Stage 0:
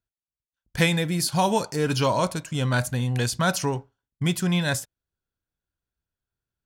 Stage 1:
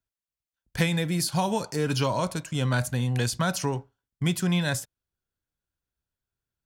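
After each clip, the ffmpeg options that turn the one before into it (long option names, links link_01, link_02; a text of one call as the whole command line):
ffmpeg -i in.wav -filter_complex "[0:a]acrossover=split=200[link_01][link_02];[link_02]acompressor=threshold=-23dB:ratio=3[link_03];[link_01][link_03]amix=inputs=2:normalize=0,volume=-1dB" out.wav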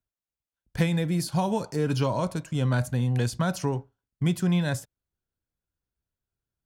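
ffmpeg -i in.wav -af "tiltshelf=frequency=1100:gain=4,volume=-2.5dB" out.wav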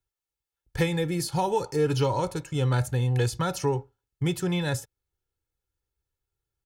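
ffmpeg -i in.wav -af "aecho=1:1:2.3:0.74" out.wav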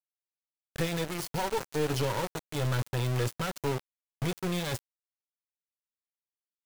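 ffmpeg -i in.wav -af "aeval=exprs='val(0)*gte(abs(val(0)),0.0473)':channel_layout=same,aeval=exprs='(tanh(12.6*val(0)+0.45)-tanh(0.45))/12.6':channel_layout=same,volume=-1dB" out.wav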